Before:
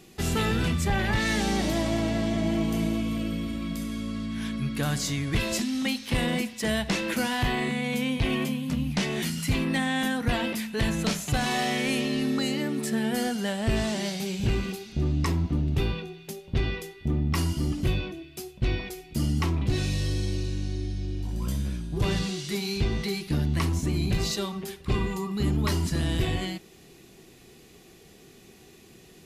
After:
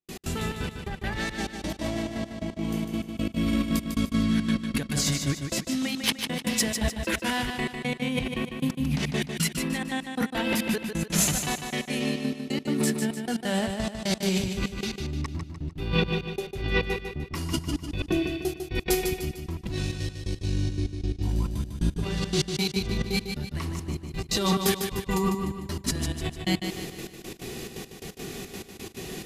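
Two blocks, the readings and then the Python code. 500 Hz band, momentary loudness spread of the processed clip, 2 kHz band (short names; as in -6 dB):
0.0 dB, 9 LU, -1.0 dB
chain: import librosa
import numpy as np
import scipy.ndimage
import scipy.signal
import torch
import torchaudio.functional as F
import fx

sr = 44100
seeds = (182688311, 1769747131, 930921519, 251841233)

y = fx.over_compress(x, sr, threshold_db=-35.0, ratio=-1.0)
y = fx.step_gate(y, sr, bpm=174, pattern='.x.xxx.x.', floor_db=-60.0, edge_ms=4.5)
y = fx.echo_feedback(y, sr, ms=150, feedback_pct=43, wet_db=-6.5)
y = F.gain(torch.from_numpy(y), 7.5).numpy()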